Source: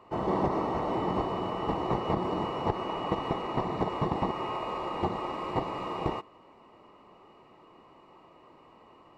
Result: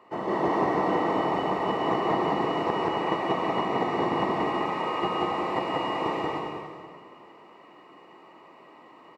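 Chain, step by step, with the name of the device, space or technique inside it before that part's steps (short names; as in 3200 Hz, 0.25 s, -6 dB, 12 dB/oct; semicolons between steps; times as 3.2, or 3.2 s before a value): stadium PA (HPF 190 Hz 12 dB/oct; bell 1900 Hz +7.5 dB 0.26 oct; loudspeakers at several distances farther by 62 m -1 dB, 93 m -11 dB; reverb RT60 1.7 s, pre-delay 0.111 s, DRR 1.5 dB)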